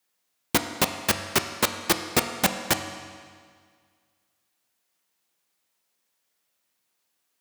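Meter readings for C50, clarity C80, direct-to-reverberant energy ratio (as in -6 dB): 8.0 dB, 9.0 dB, 6.0 dB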